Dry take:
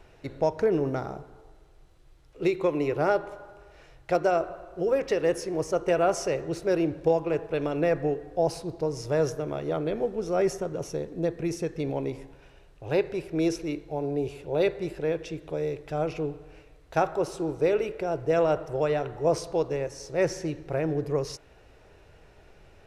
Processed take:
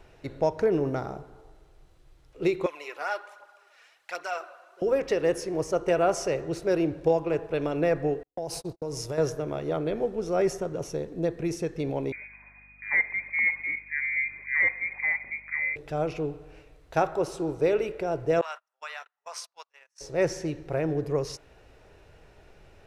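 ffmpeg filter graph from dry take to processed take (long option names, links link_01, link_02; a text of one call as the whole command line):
ffmpeg -i in.wav -filter_complex "[0:a]asettb=1/sr,asplit=3[link_01][link_02][link_03];[link_01]atrim=end=2.664[link_04];[link_02]atrim=start=2.66:end=4.82,asetpts=PTS-STARTPTS,afade=type=in:duration=0.004:curve=qsin,afade=type=out:start_time=2.156:duration=0.004:curve=qsin,highpass=1200,aphaser=in_gain=1:out_gain=1:delay=4.4:decay=0.49:speed=1.3:type=triangular[link_05];[link_03]atrim=start=4.816[link_06];[link_04][link_05]acrossfade=duration=0.004:curve1=hsin:curve2=qsin[link_07];[link_07][link_06]acrossfade=duration=0.004:curve1=qsin:curve2=hsin,asettb=1/sr,asplit=3[link_08][link_09][link_10];[link_08]atrim=end=8.234[link_11];[link_09]atrim=start=8.23:end=9.18,asetpts=PTS-STARTPTS,afade=type=in:duration=0.004:curve=qsin,afade=type=out:start_time=0.946:duration=0.004:curve=qsin,aemphasis=mode=production:type=cd,agate=range=-49dB:threshold=-38dB:ratio=16:release=100:detection=peak,acompressor=threshold=-28dB:ratio=12:attack=3.2:release=140:knee=1:detection=peak[link_12];[link_10]atrim=start=9.176[link_13];[link_11][link_12]acrossfade=duration=0.004:curve1=hsin:curve2=qsin[link_14];[link_14][link_13]acrossfade=duration=0.004:curve1=qsin:curve2=hsin,asettb=1/sr,asplit=3[link_15][link_16][link_17];[link_15]atrim=end=12.124[link_18];[link_16]atrim=start=12.12:end=15.76,asetpts=PTS-STARTPTS,afade=type=in:duration=0.004:curve=qsin,afade=type=out:start_time=3.636:duration=0.004:curve=qsin,lowpass=frequency=2100:width_type=q:width=0.5098,lowpass=frequency=2100:width_type=q:width=0.6013,lowpass=frequency=2100:width_type=q:width=0.9,lowpass=frequency=2100:width_type=q:width=2.563,afreqshift=-2500,aeval=exprs='val(0)+0.00112*(sin(2*PI*50*n/s)+sin(2*PI*2*50*n/s)/2+sin(2*PI*3*50*n/s)/3+sin(2*PI*4*50*n/s)/4+sin(2*PI*5*50*n/s)/5)':channel_layout=same[link_19];[link_17]atrim=start=15.756[link_20];[link_18][link_19]acrossfade=duration=0.004:curve1=hsin:curve2=qsin[link_21];[link_21][link_20]acrossfade=duration=0.004:curve1=qsin:curve2=hsin,asettb=1/sr,asplit=3[link_22][link_23][link_24];[link_22]atrim=end=18.414[link_25];[link_23]atrim=start=18.41:end=20.01,asetpts=PTS-STARTPTS,afade=type=in:duration=0.004:curve=qsin,afade=type=out:start_time=1.596:duration=0.004:curve=qsin,highpass=frequency=1100:width=0.5412,highpass=frequency=1100:width=1.3066,agate=range=-34dB:threshold=-44dB:ratio=16:release=100:detection=peak[link_26];[link_24]atrim=start=20.006[link_27];[link_25][link_26]acrossfade=duration=0.004:curve1=hsin:curve2=qsin[link_28];[link_28][link_27]acrossfade=duration=0.004:curve1=qsin:curve2=hsin" out.wav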